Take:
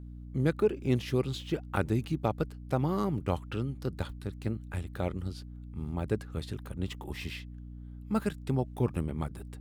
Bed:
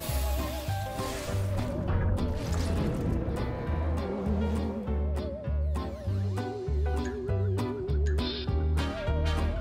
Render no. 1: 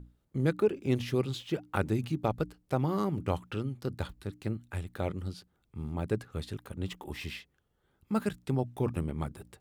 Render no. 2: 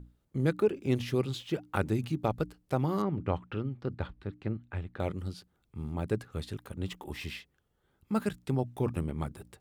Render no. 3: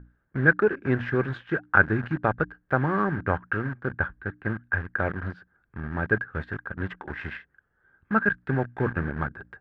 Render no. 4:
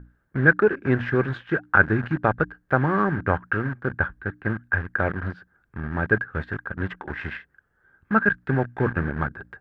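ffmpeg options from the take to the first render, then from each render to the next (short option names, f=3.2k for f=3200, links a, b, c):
-af "bandreject=f=60:t=h:w=6,bandreject=f=120:t=h:w=6,bandreject=f=180:t=h:w=6,bandreject=f=240:t=h:w=6,bandreject=f=300:t=h:w=6"
-filter_complex "[0:a]asettb=1/sr,asplit=3[a][b][c];[a]atrim=end=3.024[d];[b]atrim=start=3.02:end=5,asetpts=PTS-STARTPTS,afade=t=in:d=0.004:c=qsin,afade=t=out:st=1.976:d=0.004:c=qsin,lowpass=2.7k[e];[c]atrim=start=4.996[f];[d][e]acrossfade=d=0.004:c1=hsin:c2=qsin[g];[g][f]acrossfade=d=0.004:c1=qsin:c2=hsin"
-filter_complex "[0:a]asplit=2[a][b];[b]acrusher=bits=5:mix=0:aa=0.000001,volume=-6dB[c];[a][c]amix=inputs=2:normalize=0,lowpass=f=1.6k:t=q:w=13"
-af "volume=3dB,alimiter=limit=-3dB:level=0:latency=1"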